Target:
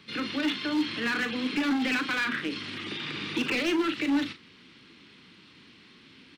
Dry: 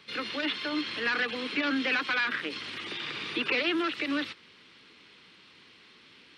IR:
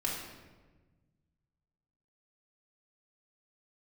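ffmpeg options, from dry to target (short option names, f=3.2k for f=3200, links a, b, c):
-filter_complex "[0:a]lowshelf=f=370:t=q:w=1.5:g=6.5,asoftclip=type=hard:threshold=-23dB,asplit=2[a][b];[b]adelay=39,volume=-9.5dB[c];[a][c]amix=inputs=2:normalize=0"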